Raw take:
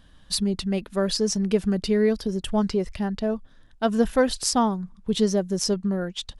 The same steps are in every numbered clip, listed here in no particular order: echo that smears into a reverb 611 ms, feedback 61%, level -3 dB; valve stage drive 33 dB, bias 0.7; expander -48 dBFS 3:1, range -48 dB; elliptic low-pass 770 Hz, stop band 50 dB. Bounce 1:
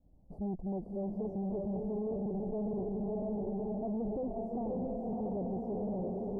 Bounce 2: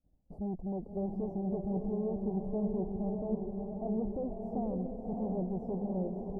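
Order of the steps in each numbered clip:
echo that smears into a reverb > expander > valve stage > elliptic low-pass; valve stage > echo that smears into a reverb > expander > elliptic low-pass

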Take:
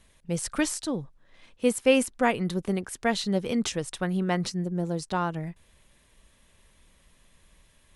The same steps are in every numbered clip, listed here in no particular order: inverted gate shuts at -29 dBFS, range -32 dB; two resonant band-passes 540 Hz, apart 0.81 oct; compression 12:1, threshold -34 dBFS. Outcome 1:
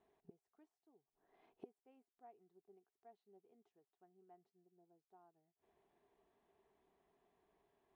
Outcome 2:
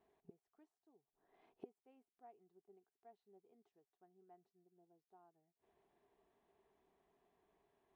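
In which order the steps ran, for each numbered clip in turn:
inverted gate > compression > two resonant band-passes; inverted gate > two resonant band-passes > compression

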